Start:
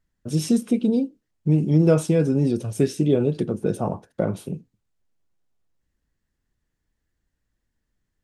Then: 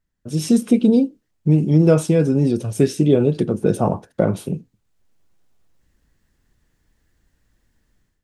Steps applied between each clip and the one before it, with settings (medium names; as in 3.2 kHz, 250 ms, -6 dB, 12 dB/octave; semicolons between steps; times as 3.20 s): level rider gain up to 14.5 dB; trim -2 dB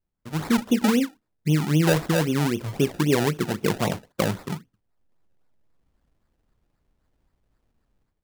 decimation with a swept rate 28×, swing 100% 3.8 Hz; trim -6 dB